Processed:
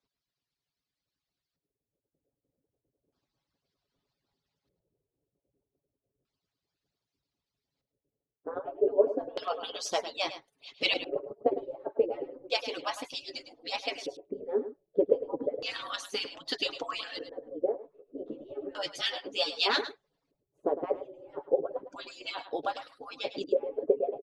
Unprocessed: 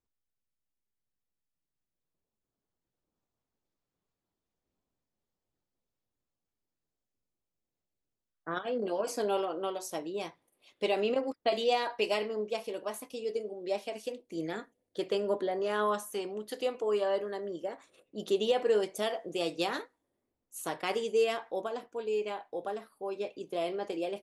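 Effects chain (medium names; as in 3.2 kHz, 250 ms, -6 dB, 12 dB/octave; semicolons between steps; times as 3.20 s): harmonic-percussive separation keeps percussive; comb 7.2 ms, depth 35%; LFO low-pass square 0.32 Hz 480–4500 Hz; delay 105 ms -12 dB; 17.72–19.66 s: three-phase chorus; trim +7.5 dB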